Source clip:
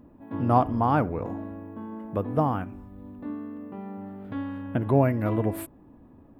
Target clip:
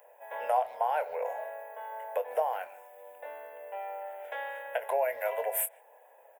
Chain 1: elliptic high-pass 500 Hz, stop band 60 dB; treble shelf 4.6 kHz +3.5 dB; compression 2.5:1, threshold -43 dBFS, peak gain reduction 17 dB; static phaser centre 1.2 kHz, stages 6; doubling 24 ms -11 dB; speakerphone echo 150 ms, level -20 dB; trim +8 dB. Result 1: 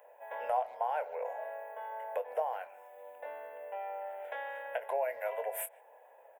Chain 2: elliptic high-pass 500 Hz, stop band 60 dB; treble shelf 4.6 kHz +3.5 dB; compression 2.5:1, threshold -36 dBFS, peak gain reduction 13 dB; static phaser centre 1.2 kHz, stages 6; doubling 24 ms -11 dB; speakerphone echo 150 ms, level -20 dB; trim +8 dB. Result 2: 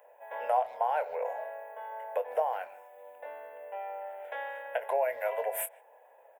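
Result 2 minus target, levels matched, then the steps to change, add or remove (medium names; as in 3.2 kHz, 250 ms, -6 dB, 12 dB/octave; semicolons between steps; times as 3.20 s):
8 kHz band -4.0 dB
change: treble shelf 4.6 kHz +12 dB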